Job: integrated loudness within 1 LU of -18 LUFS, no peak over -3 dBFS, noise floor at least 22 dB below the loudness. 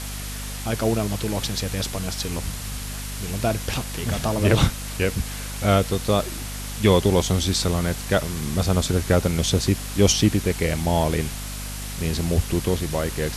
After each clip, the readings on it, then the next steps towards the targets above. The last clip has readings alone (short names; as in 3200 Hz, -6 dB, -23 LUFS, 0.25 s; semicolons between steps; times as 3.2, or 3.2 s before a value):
hum 50 Hz; harmonics up to 250 Hz; hum level -30 dBFS; noise floor -32 dBFS; noise floor target -46 dBFS; loudness -23.5 LUFS; peak -5.0 dBFS; loudness target -18.0 LUFS
-> de-hum 50 Hz, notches 5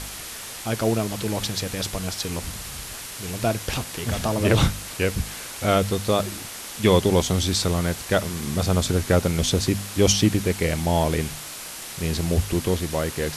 hum none; noise floor -36 dBFS; noise floor target -46 dBFS
-> denoiser 10 dB, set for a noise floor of -36 dBFS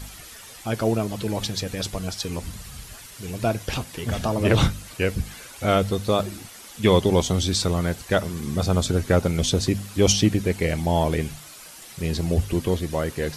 noise floor -43 dBFS; noise floor target -46 dBFS
-> denoiser 6 dB, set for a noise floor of -43 dBFS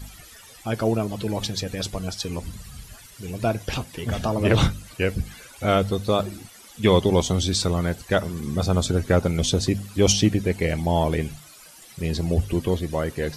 noise floor -47 dBFS; loudness -24.0 LUFS; peak -5.5 dBFS; loudness target -18.0 LUFS
-> gain +6 dB; limiter -3 dBFS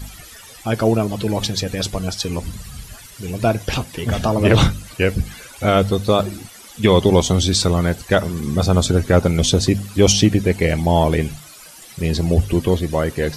loudness -18.0 LUFS; peak -3.0 dBFS; noise floor -41 dBFS